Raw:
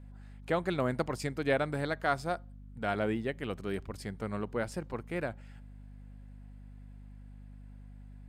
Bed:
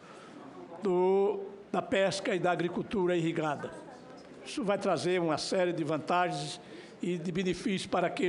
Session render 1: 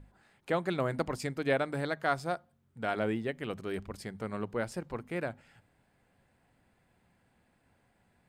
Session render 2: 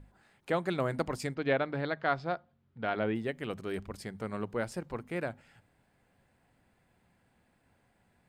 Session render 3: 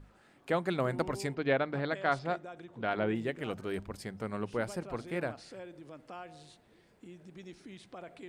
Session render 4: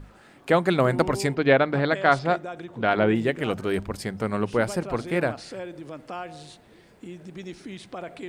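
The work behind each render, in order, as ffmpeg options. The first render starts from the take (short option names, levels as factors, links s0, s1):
-af "bandreject=f=50:t=h:w=6,bandreject=f=100:t=h:w=6,bandreject=f=150:t=h:w=6,bandreject=f=200:t=h:w=6,bandreject=f=250:t=h:w=6"
-filter_complex "[0:a]asplit=3[s0][s1][s2];[s0]afade=t=out:st=1.34:d=0.02[s3];[s1]lowpass=f=4400:w=0.5412,lowpass=f=4400:w=1.3066,afade=t=in:st=1.34:d=0.02,afade=t=out:st=3.14:d=0.02[s4];[s2]afade=t=in:st=3.14:d=0.02[s5];[s3][s4][s5]amix=inputs=3:normalize=0"
-filter_complex "[1:a]volume=0.133[s0];[0:a][s0]amix=inputs=2:normalize=0"
-af "volume=3.35"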